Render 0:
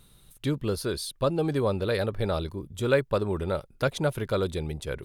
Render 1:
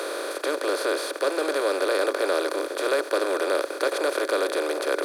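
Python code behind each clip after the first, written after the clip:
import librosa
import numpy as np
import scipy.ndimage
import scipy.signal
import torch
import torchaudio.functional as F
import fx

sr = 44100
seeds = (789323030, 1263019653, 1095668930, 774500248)

y = fx.bin_compress(x, sr, power=0.2)
y = scipy.signal.sosfilt(scipy.signal.butter(12, 310.0, 'highpass', fs=sr, output='sos'), y)
y = y * 10.0 ** (-4.5 / 20.0)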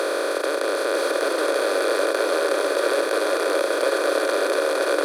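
y = fx.bin_compress(x, sr, power=0.2)
y = y + 10.0 ** (-3.5 / 20.0) * np.pad(y, (int(945 * sr / 1000.0), 0))[:len(y)]
y = y * 10.0 ** (-4.5 / 20.0)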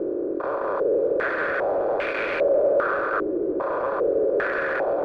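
y = np.clip(x, -10.0 ** (-22.0 / 20.0), 10.0 ** (-22.0 / 20.0))
y = fx.filter_held_lowpass(y, sr, hz=2.5, low_hz=350.0, high_hz=2300.0)
y = y * 10.0 ** (-3.0 / 20.0)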